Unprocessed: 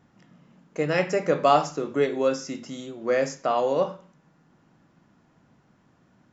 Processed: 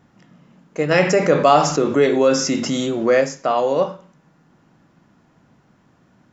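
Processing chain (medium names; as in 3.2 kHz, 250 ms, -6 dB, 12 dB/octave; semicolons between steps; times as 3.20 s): 0.91–3.21 s: level flattener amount 50%; trim +5 dB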